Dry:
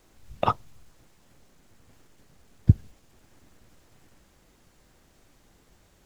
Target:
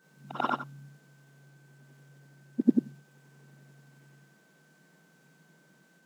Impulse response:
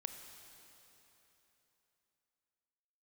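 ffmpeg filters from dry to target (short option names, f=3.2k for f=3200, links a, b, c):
-af "afftfilt=real='re':imag='-im':win_size=8192:overlap=0.75,aeval=exprs='val(0)+0.000562*sin(2*PI*1400*n/s)':c=same,afreqshift=140"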